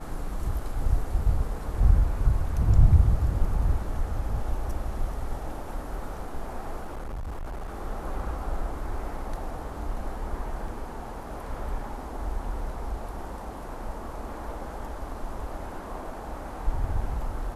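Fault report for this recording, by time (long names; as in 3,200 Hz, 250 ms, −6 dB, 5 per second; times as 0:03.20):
0:06.84–0:07.76: clipping −31 dBFS
0:10.68: drop-out 2.6 ms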